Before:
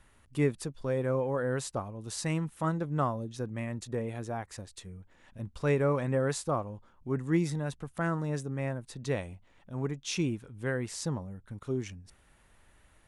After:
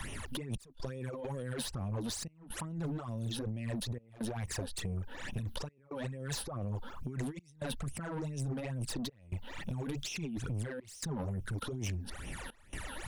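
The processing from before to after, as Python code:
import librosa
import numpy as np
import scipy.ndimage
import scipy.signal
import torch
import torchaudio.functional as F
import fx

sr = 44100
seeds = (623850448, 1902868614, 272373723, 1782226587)

y = fx.phaser_stages(x, sr, stages=12, low_hz=110.0, high_hz=1500.0, hz=2.3, feedback_pct=45)
y = fx.over_compress(y, sr, threshold_db=-44.0, ratio=-1.0)
y = 10.0 ** (-39.5 / 20.0) * np.tanh(y / 10.0 ** (-39.5 / 20.0))
y = fx.dynamic_eq(y, sr, hz=1700.0, q=0.81, threshold_db=-59.0, ratio=4.0, max_db=-3)
y = fx.step_gate(y, sr, bpm=132, pattern='xxxxx..xxxxxxxx', floor_db=-24.0, edge_ms=4.5)
y = fx.band_squash(y, sr, depth_pct=70)
y = y * 10.0 ** (8.0 / 20.0)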